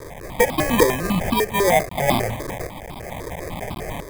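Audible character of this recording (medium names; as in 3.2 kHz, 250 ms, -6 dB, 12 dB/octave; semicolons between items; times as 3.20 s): a quantiser's noise floor 6-bit, dither triangular; tremolo saw up 0.75 Hz, depth 60%; aliases and images of a low sample rate 1.4 kHz, jitter 0%; notches that jump at a steady rate 10 Hz 770–1800 Hz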